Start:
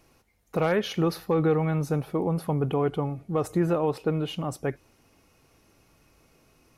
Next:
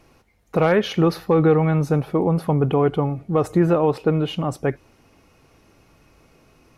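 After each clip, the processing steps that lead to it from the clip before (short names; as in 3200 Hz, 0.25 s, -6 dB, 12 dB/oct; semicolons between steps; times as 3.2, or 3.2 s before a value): high shelf 5700 Hz -9 dB; gain +7 dB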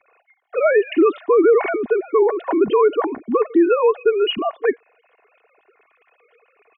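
sine-wave speech; comb 2.8 ms, depth 57%; limiter -11 dBFS, peak gain reduction 8.5 dB; gain +3.5 dB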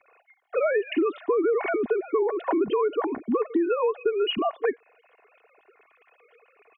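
compressor 6:1, threshold -20 dBFS, peak gain reduction 9.5 dB; gain -1 dB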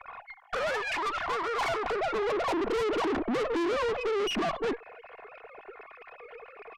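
overdrive pedal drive 26 dB, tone 1100 Hz, clips at -13.5 dBFS; high-pass sweep 920 Hz -> 150 Hz, 1.61–4.31; tube stage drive 27 dB, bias 0.6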